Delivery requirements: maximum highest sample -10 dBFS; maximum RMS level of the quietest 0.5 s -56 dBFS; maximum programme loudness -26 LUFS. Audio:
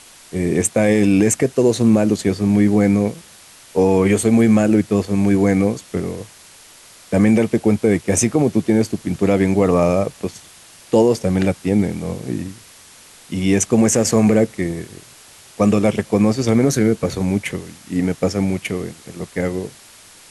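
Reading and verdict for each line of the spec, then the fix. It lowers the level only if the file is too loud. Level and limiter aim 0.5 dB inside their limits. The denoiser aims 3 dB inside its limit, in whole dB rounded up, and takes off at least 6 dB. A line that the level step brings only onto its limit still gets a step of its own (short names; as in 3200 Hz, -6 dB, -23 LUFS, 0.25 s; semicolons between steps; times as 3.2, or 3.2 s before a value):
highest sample -5.0 dBFS: fail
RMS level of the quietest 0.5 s -45 dBFS: fail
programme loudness -17.5 LUFS: fail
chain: denoiser 6 dB, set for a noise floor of -45 dBFS; gain -9 dB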